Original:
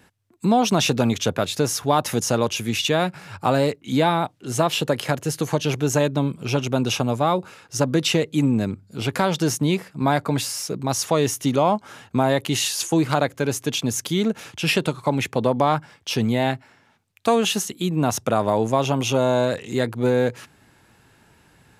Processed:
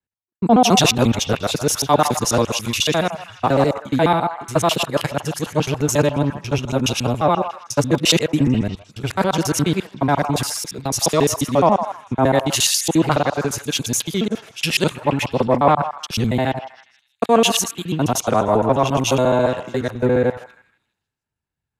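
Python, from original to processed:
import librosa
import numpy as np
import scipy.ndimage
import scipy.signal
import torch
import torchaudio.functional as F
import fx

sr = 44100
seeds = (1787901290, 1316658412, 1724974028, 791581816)

y = fx.local_reverse(x, sr, ms=70.0)
y = fx.echo_stepped(y, sr, ms=159, hz=890.0, octaves=0.7, feedback_pct=70, wet_db=-5.0)
y = fx.band_widen(y, sr, depth_pct=100)
y = y * 10.0 ** (3.0 / 20.0)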